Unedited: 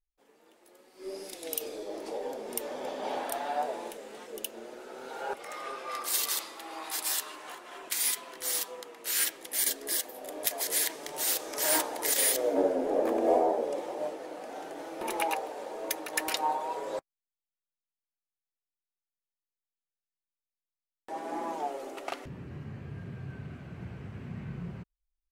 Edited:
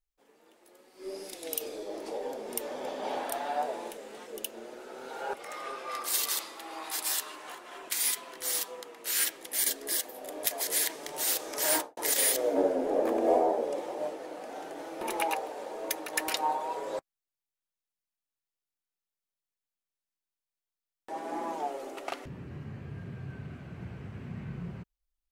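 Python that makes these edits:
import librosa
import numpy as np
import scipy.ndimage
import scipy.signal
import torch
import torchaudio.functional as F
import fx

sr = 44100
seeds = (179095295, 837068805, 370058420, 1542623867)

y = fx.studio_fade_out(x, sr, start_s=11.72, length_s=0.25)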